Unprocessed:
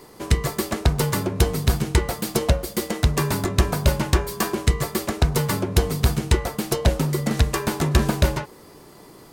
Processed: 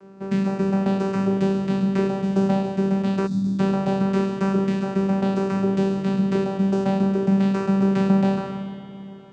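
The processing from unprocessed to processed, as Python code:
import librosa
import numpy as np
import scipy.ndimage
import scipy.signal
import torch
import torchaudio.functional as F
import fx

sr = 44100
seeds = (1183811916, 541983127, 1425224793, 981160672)

y = fx.spec_trails(x, sr, decay_s=1.17)
y = fx.high_shelf(y, sr, hz=2300.0, db=-9.5)
y = fx.vocoder(y, sr, bands=8, carrier='saw', carrier_hz=194.0)
y = fx.peak_eq(y, sr, hz=1800.0, db=2.0, octaves=0.77)
y = fx.rev_spring(y, sr, rt60_s=3.8, pass_ms=(56,), chirp_ms=55, drr_db=6.5)
y = fx.spec_box(y, sr, start_s=3.27, length_s=0.32, low_hz=330.0, high_hz=3300.0, gain_db=-21)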